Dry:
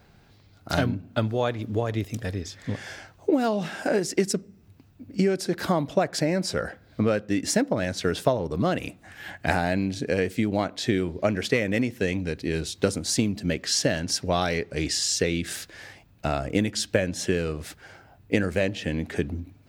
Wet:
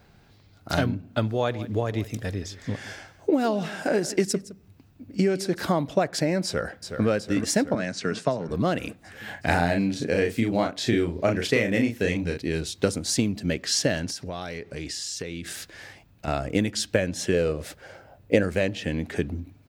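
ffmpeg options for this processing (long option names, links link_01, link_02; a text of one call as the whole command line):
ffmpeg -i in.wav -filter_complex "[0:a]asettb=1/sr,asplit=3[link_01][link_02][link_03];[link_01]atrim=end=1.344[link_04];[link_02]atrim=start=1.34:end=5.63,asetpts=PTS-STARTPTS,afade=type=in:duration=0.004:curve=qsin,afade=type=out:start_time=4.286:duration=0.004:curve=qsin,aecho=1:1:164:0.141,atrim=end_sample=189189[link_05];[link_03]atrim=start=5.626[link_06];[link_04][link_05]acrossfade=duration=0.004:curve1=hsin:curve2=qsin[link_07];[link_07][link_06]acrossfade=duration=0.004:curve1=qsin:curve2=hsin,asplit=2[link_08][link_09];[link_09]afade=type=in:start_time=6.45:duration=0.01,afade=type=out:start_time=7.07:duration=0.01,aecho=0:1:370|740|1110|1480|1850|2220|2590|2960|3330|3700|4070:0.421697|0.295188|0.206631|0.144642|0.101249|0.0708745|0.0496122|0.0347285|0.02431|0.017017|0.0119119[link_10];[link_08][link_10]amix=inputs=2:normalize=0,asettb=1/sr,asplit=3[link_11][link_12][link_13];[link_11]atrim=end=7.754[link_14];[link_12]atrim=start=7.75:end=8.49,asetpts=PTS-STARTPTS,afade=type=in:duration=0.004:curve=qsin,afade=type=out:start_time=0.736:duration=0.004:curve=qsin,highpass=frequency=130:width=0.5412,highpass=frequency=130:width=1.3066,equalizer=frequency=340:width_type=q:width=4:gain=-5,equalizer=frequency=510:width_type=q:width=4:gain=-5,equalizer=frequency=850:width_type=q:width=4:gain=-5,equalizer=frequency=3400:width_type=q:width=4:gain=-7,lowpass=frequency=8200:width=0.5412,lowpass=frequency=8200:width=1.3066[link_15];[link_13]atrim=start=8.486[link_16];[link_14][link_15]acrossfade=duration=0.004:curve1=hsin:curve2=qsin[link_17];[link_17][link_16]acrossfade=duration=0.004:curve1=qsin:curve2=hsin,asettb=1/sr,asplit=3[link_18][link_19][link_20];[link_18]atrim=end=9.244[link_21];[link_19]atrim=start=9.24:end=12.38,asetpts=PTS-STARTPTS,afade=type=in:duration=0.004:curve=qsin,afade=type=out:start_time=3.136:duration=0.004:curve=qsin,asplit=2[link_22][link_23];[link_23]adelay=35,volume=-4.5dB[link_24];[link_22][link_24]amix=inputs=2:normalize=0,atrim=end_sample=138474[link_25];[link_20]atrim=start=12.376[link_26];[link_21][link_25]acrossfade=duration=0.004:curve1=hsin:curve2=qsin[link_27];[link_27][link_26]acrossfade=duration=0.004:curve1=qsin:curve2=hsin,asettb=1/sr,asplit=3[link_28][link_29][link_30];[link_28]atrim=end=14.104[link_31];[link_29]atrim=start=14.1:end=16.28,asetpts=PTS-STARTPTS,afade=type=in:duration=0.004:curve=qsin,afade=type=out:start_time=2.176:duration=0.004:curve=qsin,acompressor=threshold=-32dB:ratio=3:attack=3.2:release=140:knee=1:detection=peak[link_32];[link_30]atrim=start=16.276[link_33];[link_31][link_32]acrossfade=duration=0.004:curve1=hsin:curve2=qsin[link_34];[link_34][link_33]acrossfade=duration=0.004:curve1=qsin:curve2=hsin,asettb=1/sr,asplit=3[link_35][link_36][link_37];[link_35]atrim=end=17.334[link_38];[link_36]atrim=start=17.33:end=18.43,asetpts=PTS-STARTPTS,afade=type=in:duration=0.004:curve=qsin,afade=type=out:start_time=1.096:duration=0.004:curve=qsin,equalizer=frequency=550:width=3.1:gain=11.5[link_39];[link_37]atrim=start=18.426[link_40];[link_38][link_39]acrossfade=duration=0.004:curve1=hsin:curve2=qsin[link_41];[link_41][link_40]acrossfade=duration=0.004:curve1=qsin:curve2=hsin" out.wav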